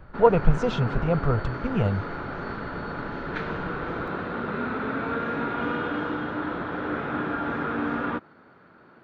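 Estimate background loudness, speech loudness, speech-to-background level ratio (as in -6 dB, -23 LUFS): -30.5 LUFS, -24.5 LUFS, 6.0 dB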